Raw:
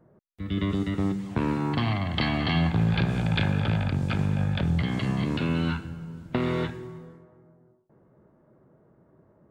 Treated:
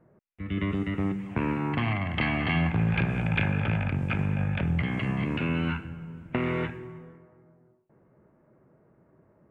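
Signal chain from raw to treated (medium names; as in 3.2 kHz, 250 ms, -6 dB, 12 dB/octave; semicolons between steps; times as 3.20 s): resonant high shelf 3.2 kHz -8.5 dB, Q 3; trim -2 dB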